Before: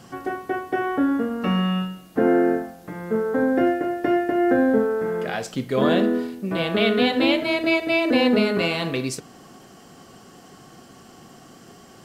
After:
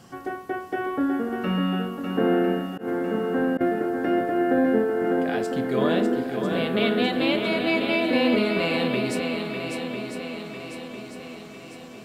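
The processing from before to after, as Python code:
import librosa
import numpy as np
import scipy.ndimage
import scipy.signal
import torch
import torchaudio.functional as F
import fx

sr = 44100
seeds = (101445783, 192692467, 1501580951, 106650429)

y = fx.echo_swing(x, sr, ms=1000, ratio=1.5, feedback_pct=49, wet_db=-6)
y = fx.dynamic_eq(y, sr, hz=6100.0, q=2.7, threshold_db=-52.0, ratio=4.0, max_db=-7)
y = fx.auto_swell(y, sr, attack_ms=116.0, at=(2.67, 3.61))
y = y * 10.0 ** (-3.5 / 20.0)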